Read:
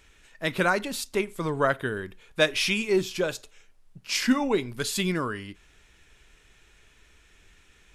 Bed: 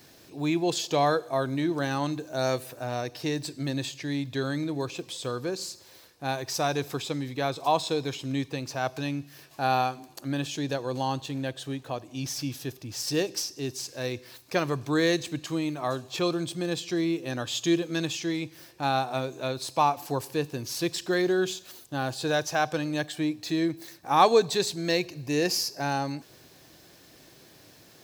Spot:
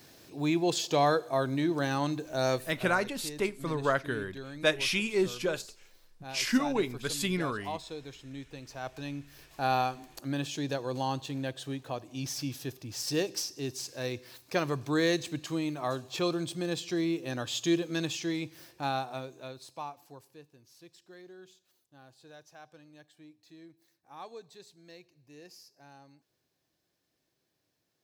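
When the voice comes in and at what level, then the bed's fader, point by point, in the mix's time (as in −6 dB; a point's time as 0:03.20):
2.25 s, −4.0 dB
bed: 0:02.55 −1.5 dB
0:03.03 −13.5 dB
0:08.42 −13.5 dB
0:09.59 −3 dB
0:18.70 −3 dB
0:20.56 −26 dB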